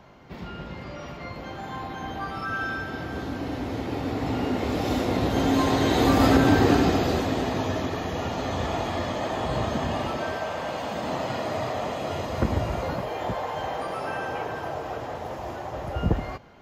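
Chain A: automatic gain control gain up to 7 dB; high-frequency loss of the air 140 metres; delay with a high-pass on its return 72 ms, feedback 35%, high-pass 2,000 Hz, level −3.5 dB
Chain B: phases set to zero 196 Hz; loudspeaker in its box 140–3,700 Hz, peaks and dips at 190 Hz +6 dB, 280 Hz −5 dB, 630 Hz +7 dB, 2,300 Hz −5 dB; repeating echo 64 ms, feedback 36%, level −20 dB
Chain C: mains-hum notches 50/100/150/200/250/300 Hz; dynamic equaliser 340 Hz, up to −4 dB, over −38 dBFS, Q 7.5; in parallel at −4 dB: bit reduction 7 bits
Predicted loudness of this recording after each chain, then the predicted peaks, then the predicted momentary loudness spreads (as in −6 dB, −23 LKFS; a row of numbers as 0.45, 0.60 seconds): −21.0, −27.5, −23.0 LKFS; −3.0, −7.0, −3.0 dBFS; 12, 14, 14 LU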